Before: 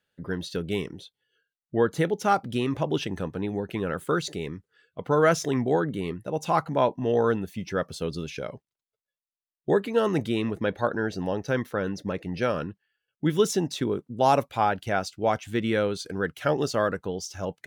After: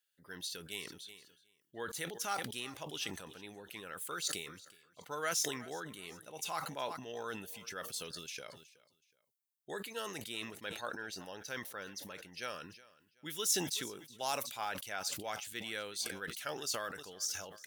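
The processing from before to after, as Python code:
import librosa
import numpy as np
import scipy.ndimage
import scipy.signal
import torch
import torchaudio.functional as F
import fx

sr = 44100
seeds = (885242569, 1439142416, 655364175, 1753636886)

p1 = scipy.signal.lfilter([1.0, -0.97], [1.0], x)
p2 = p1 + fx.echo_feedback(p1, sr, ms=371, feedback_pct=32, wet_db=-21, dry=0)
p3 = fx.sustainer(p2, sr, db_per_s=64.0)
y = F.gain(torch.from_numpy(p3), 1.5).numpy()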